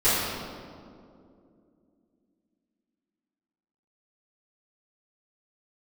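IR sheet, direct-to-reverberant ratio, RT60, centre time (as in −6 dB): −16.5 dB, 2.5 s, 129 ms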